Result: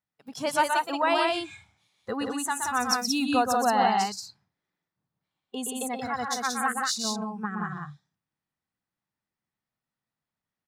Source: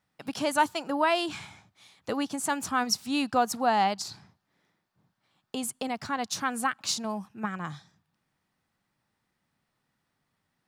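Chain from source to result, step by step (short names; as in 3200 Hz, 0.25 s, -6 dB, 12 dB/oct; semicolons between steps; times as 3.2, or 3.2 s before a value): spectral noise reduction 15 dB; loudspeakers at several distances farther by 42 m -5 dB, 61 m -3 dB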